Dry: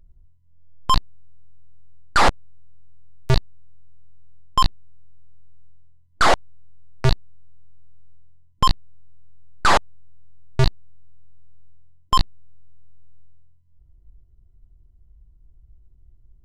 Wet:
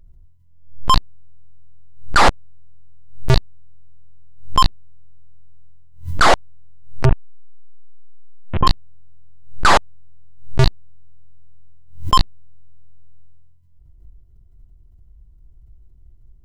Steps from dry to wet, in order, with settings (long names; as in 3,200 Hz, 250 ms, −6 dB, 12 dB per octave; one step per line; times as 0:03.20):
0:07.05–0:08.67: linear delta modulator 16 kbit/s, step −26 dBFS
background raised ahead of every attack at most 100 dB per second
level +3.5 dB